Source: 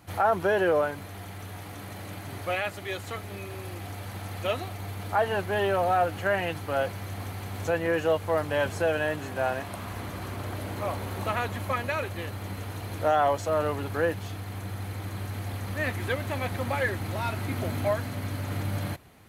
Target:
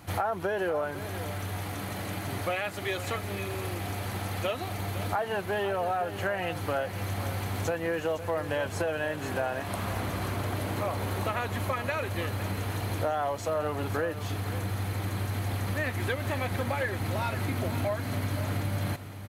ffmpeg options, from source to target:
-af "acompressor=threshold=0.0251:ratio=6,aecho=1:1:509:0.237,volume=1.78"

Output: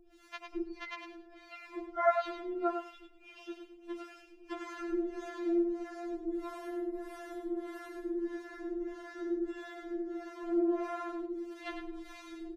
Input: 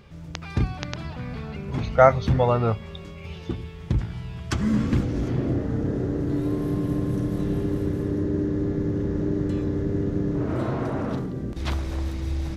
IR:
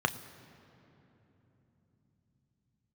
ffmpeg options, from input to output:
-filter_complex "[0:a]acrossover=split=3200[s0][s1];[s1]acompressor=threshold=0.00141:ratio=4:attack=1:release=60[s2];[s0][s2]amix=inputs=2:normalize=0,acrossover=split=570[s3][s4];[s3]aeval=exprs='val(0)*(1-1/2+1/2*cos(2*PI*1.6*n/s))':c=same[s5];[s4]aeval=exprs='val(0)*(1-1/2-1/2*cos(2*PI*1.6*n/s))':c=same[s6];[s5][s6]amix=inputs=2:normalize=0,asplit=2[s7][s8];[s8]aecho=0:1:102|204|306:0.447|0.0759|0.0129[s9];[s7][s9]amix=inputs=2:normalize=0,afftfilt=real='re*4*eq(mod(b,16),0)':imag='im*4*eq(mod(b,16),0)':win_size=2048:overlap=0.75"

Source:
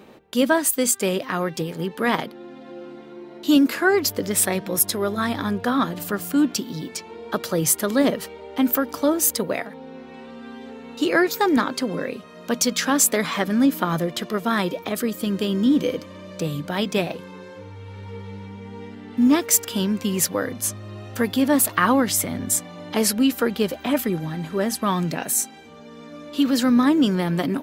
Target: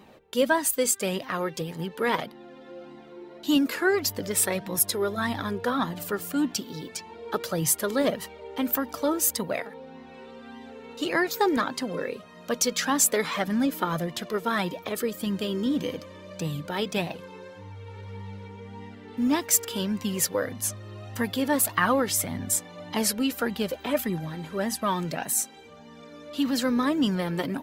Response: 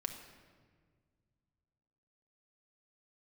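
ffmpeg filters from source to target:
-af "flanger=delay=1:depth=1.3:regen=33:speed=1.7:shape=sinusoidal"

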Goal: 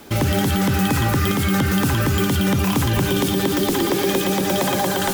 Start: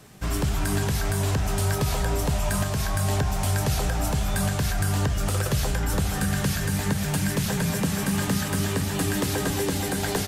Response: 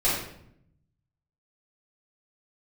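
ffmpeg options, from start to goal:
-filter_complex "[0:a]equalizer=f=4500:t=o:w=0.24:g=-2,asplit=2[s0][s1];[s1]alimiter=limit=0.0944:level=0:latency=1,volume=0.794[s2];[s0][s2]amix=inputs=2:normalize=0,asetrate=88200,aresample=44100,volume=1.26"

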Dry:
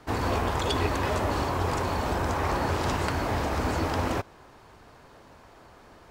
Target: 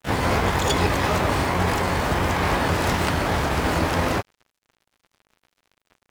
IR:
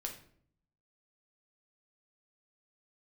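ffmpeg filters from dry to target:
-filter_complex "[0:a]asplit=2[s0][s1];[s1]asetrate=88200,aresample=44100,atempo=0.5,volume=0.631[s2];[s0][s2]amix=inputs=2:normalize=0,aeval=exprs='sgn(val(0))*max(abs(val(0))-0.00668,0)':c=same,volume=1.78"

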